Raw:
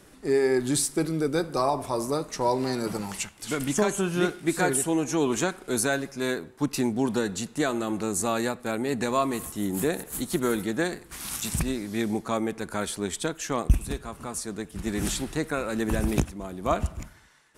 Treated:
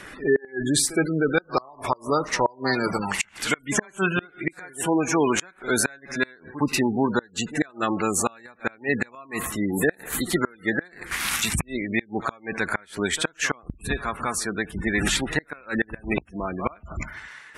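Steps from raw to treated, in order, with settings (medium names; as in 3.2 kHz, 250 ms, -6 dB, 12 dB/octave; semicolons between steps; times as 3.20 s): pre-echo 66 ms -18 dB; spectral gate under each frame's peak -25 dB strong; peaking EQ 1.9 kHz +15 dB 1.8 oct; inverted gate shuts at -11 dBFS, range -30 dB; in parallel at -0.5 dB: compression, threshold -33 dBFS, peak gain reduction 15.5 dB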